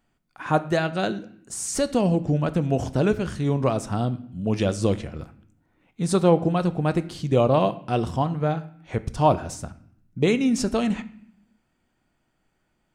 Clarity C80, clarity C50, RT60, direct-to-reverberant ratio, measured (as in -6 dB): 19.0 dB, 16.5 dB, 0.65 s, 12.0 dB